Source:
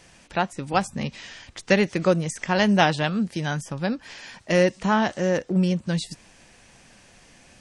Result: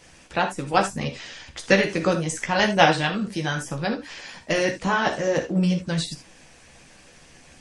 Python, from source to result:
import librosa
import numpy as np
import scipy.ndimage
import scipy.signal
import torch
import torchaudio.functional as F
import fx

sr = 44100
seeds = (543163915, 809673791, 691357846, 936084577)

y = fx.chorus_voices(x, sr, voices=4, hz=0.73, base_ms=14, depth_ms=2.0, mix_pct=35)
y = fx.rev_gated(y, sr, seeds[0], gate_ms=100, shape='flat', drr_db=4.0)
y = fx.hpss(y, sr, part='harmonic', gain_db=-6)
y = y * librosa.db_to_amplitude(6.0)